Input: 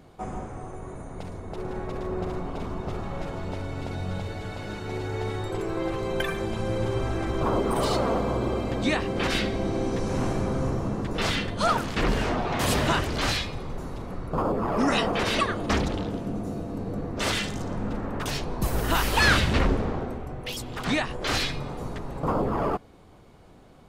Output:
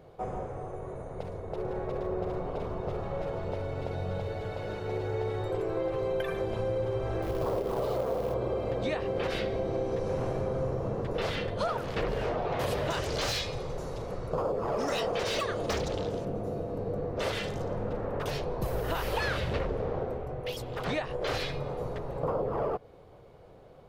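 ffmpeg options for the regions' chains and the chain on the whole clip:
-filter_complex "[0:a]asettb=1/sr,asplit=3[a][b][c];[a]atrim=end=7.224[d];[b]atrim=start=7.22:end=8.34,asetpts=PTS-STARTPTS,afade=t=in:d=0.004:c=qsin,afade=t=out:st=1.116:d=0.004:c=qsin,highshelf=f=2k:g=-8.5,acrusher=bits=3:mode=log:mix=0:aa=0.000001[e];[c]atrim=start=8.336[f];[d][e]acrossfade=d=0.004:c1=hsin:c2=qsin[g];[g][f]acrossfade=d=0.004:c1=qsin:c2=hsin,asettb=1/sr,asplit=3[h][i][j];[h]atrim=end=12.904[k];[i]atrim=start=12.9:end=16.25,asetpts=PTS-STARTPTS,afade=t=in:d=0.004:c=qsin,afade=t=out:st=3.346:d=0.004:c=qsin,equalizer=f=6.7k:t=o:w=1.6:g=13,asoftclip=type=hard:threshold=-17dB[l];[j]atrim=start=16.246[m];[k][l]acrossfade=d=0.004:c1=hsin:c2=qsin[n];[n][m]acrossfade=d=0.004:c1=qsin:c2=hsin,equalizer=f=125:t=o:w=1:g=5,equalizer=f=250:t=o:w=1:g=-7,equalizer=f=500:t=o:w=1:g=12,equalizer=f=8k:t=o:w=1:g=-7,acompressor=threshold=-22dB:ratio=6,volume=-5dB"

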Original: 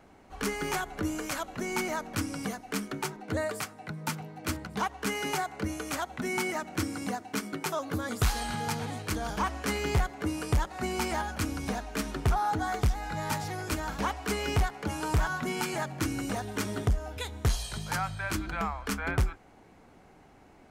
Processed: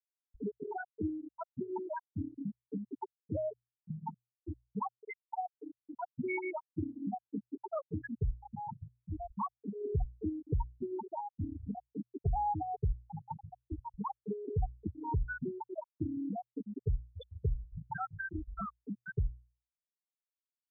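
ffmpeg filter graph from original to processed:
-filter_complex "[0:a]asettb=1/sr,asplit=3[a][b][c];[a]atrim=end=4.894[d];[b]atrim=start=4.89:end=5.89,asetpts=PTS-STARTPTS,afade=t=in:d=0.004:c=qsin,afade=t=out:st=0.996:d=0.004:c=qsin,highpass=390,acrossover=split=4400[e][f];[f]acompressor=threshold=-53dB:ratio=4:attack=1:release=60[g];[e][g]amix=inputs=2:normalize=0[h];[c]atrim=start=5.886[i];[d][h]acrossfade=d=0.004:c1=hsin:c2=qsin[j];[j][i]acrossfade=d=0.004:c1=qsin:c2=hsin,acompressor=threshold=-47dB:ratio=2,afftfilt=real='re*gte(hypot(re,im),0.0562)':imag='im*gte(hypot(re,im),0.0562)':win_size=1024:overlap=0.75,bandreject=f=60:t=h:w=6,bandreject=f=120:t=h:w=6,volume=8.5dB"

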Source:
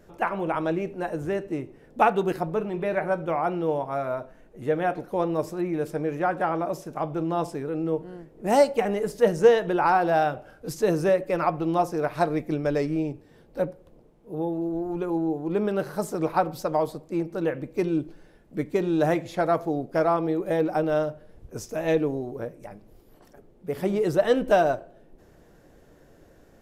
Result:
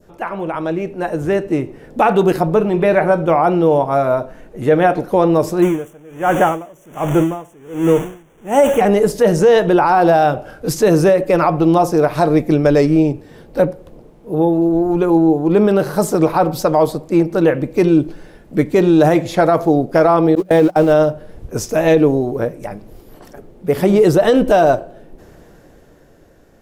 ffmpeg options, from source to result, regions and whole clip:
-filter_complex "[0:a]asettb=1/sr,asplit=3[a][b][c];[a]atrim=end=5.624[d];[b]atrim=start=5.62:end=8.81,asetpts=PTS-STARTPTS,afade=t=in:d=0.004:c=qsin,afade=t=out:st=3.186:d=0.004:c=qsin,aeval=exprs='val(0)+0.5*0.0299*sgn(val(0))':c=same,asuperstop=centerf=4500:order=12:qfactor=2,aeval=exprs='val(0)*pow(10,-30*(0.5-0.5*cos(2*PI*1.3*n/s))/20)':c=same[e];[c]atrim=start=8.806[f];[d][e]acrossfade=d=0.004:c1=hsin:c2=qsin[g];[g][f]acrossfade=d=0.004:c1=qsin:c2=hsin,asettb=1/sr,asplit=3[h][i][j];[h]atrim=end=20.354[k];[i]atrim=start=20.35:end=20.93,asetpts=PTS-STARTPTS,afade=t=in:d=0.004:c=qsin,afade=t=out:st=0.576:d=0.004:c=qsin,aeval=exprs='val(0)+0.5*0.01*sgn(val(0))':c=same,agate=range=-29dB:threshold=-26dB:ratio=16:release=100:detection=peak,bandreject=f=60:t=h:w=6,bandreject=f=120:t=h:w=6,bandreject=f=180:t=h:w=6[l];[j]atrim=start=20.926[m];[k][l]acrossfade=d=0.004:c1=hsin:c2=qsin[n];[n][m]acrossfade=d=0.004:c1=qsin:c2=hsin,alimiter=limit=-17.5dB:level=0:latency=1:release=30,dynaudnorm=f=120:g=21:m=9dB,adynamicequalizer=threshold=0.02:dfrequency=1900:dqfactor=1.1:tfrequency=1900:tqfactor=1.1:attack=5:release=100:ratio=0.375:range=2.5:mode=cutabove:tftype=bell,volume=5dB"

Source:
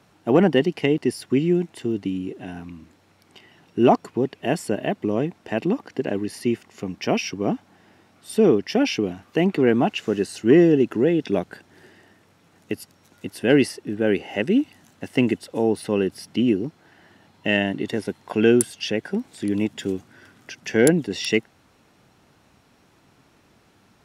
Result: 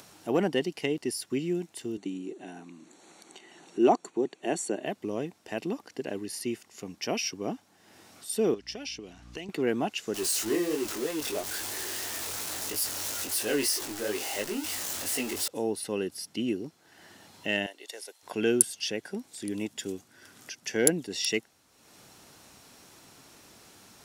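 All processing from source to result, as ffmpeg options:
-filter_complex "[0:a]asettb=1/sr,asplit=3[a][b][c];[a]atrim=end=1.974[d];[b]atrim=start=1.97:end=4.86,asetpts=PTS-STARTPTS,afade=t=in:d=0.004:c=qsin,afade=t=out:st=2.886:d=0.004:c=qsin,asuperstop=centerf=5100:order=8:qfactor=5.6,highpass=f=160:w=0.5412,highpass=f=160:w=1.3066,equalizer=f=350:t=q:w=4:g=7,equalizer=f=780:t=q:w=4:g=4,equalizer=f=3k:t=q:w=4:g=-3,equalizer=f=7.6k:t=q:w=4:g=3,lowpass=f=9.3k:w=0.5412,lowpass=f=9.3k:w=1.3066[e];[c]atrim=start=4.856[f];[d][e]acrossfade=d=0.004:c1=hsin:c2=qsin[g];[g][f]acrossfade=d=0.004:c1=qsin:c2=hsin,asettb=1/sr,asplit=3[h][i][j];[h]atrim=end=8.544[k];[i]atrim=start=8.54:end=9.49,asetpts=PTS-STARTPTS,afade=t=in:d=0.004:c=qsin,afade=t=out:st=0.946:d=0.004:c=qsin,aeval=exprs='val(0)+0.0141*(sin(2*PI*60*n/s)+sin(2*PI*2*60*n/s)/2+sin(2*PI*3*60*n/s)/3+sin(2*PI*4*60*n/s)/4+sin(2*PI*5*60*n/s)/5)':c=same,acrossover=split=860|2600[l][m][n];[l]acompressor=threshold=-32dB:ratio=4[o];[m]acompressor=threshold=-46dB:ratio=4[p];[n]acompressor=threshold=-34dB:ratio=4[q];[o][p][q]amix=inputs=3:normalize=0,lowpass=7k[r];[j]atrim=start=9.486[s];[k][r]acrossfade=d=0.004:c1=hsin:c2=qsin[t];[t][s]acrossfade=d=0.004:c1=qsin:c2=hsin,asettb=1/sr,asplit=3[u][v][w];[u]atrim=end=10.144[x];[v]atrim=start=10.14:end=15.48,asetpts=PTS-STARTPTS,afade=t=in:d=0.004:c=qsin,afade=t=out:st=5.336:d=0.004:c=qsin,aeval=exprs='val(0)+0.5*0.0794*sgn(val(0))':c=same,equalizer=f=170:t=o:w=1.1:g=-10,flanger=delay=18.5:depth=3.9:speed=3[y];[w]atrim=start=15.476[z];[x][y]acrossfade=d=0.004:c1=hsin:c2=qsin[aa];[aa][z]acrossfade=d=0.004:c1=qsin:c2=hsin,asettb=1/sr,asplit=3[ab][ac][ad];[ab]atrim=end=17.664[ae];[ac]atrim=start=17.66:end=18.23,asetpts=PTS-STARTPTS,afade=t=in:d=0.004:c=qsin,afade=t=out:st=0.566:d=0.004:c=qsin,highpass=f=530:w=0.5412,highpass=f=530:w=1.3066,equalizer=f=1.2k:t=o:w=2.1:g=-6[af];[ad]atrim=start=18.226[ag];[ae][af]acrossfade=d=0.004:c1=hsin:c2=qsin[ah];[ah][ag]acrossfade=d=0.004:c1=qsin:c2=hsin,bass=f=250:g=-5,treble=f=4k:g=12,acompressor=mode=upward:threshold=-34dB:ratio=2.5,volume=-8.5dB"

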